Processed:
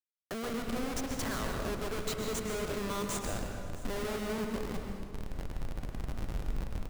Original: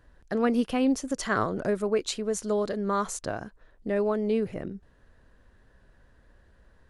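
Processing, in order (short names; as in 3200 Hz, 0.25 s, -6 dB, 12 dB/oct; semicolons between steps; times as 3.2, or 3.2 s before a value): Wiener smoothing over 15 samples; recorder AGC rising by 77 dB/s; tilt +3.5 dB/oct; Schmitt trigger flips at -30.5 dBFS; echo 0.664 s -19 dB; on a send at -3 dB: reverb RT60 1.3 s, pre-delay 0.122 s; on the sum: warbling echo 0.104 s, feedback 75%, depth 101 cents, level -15.5 dB; gain -5.5 dB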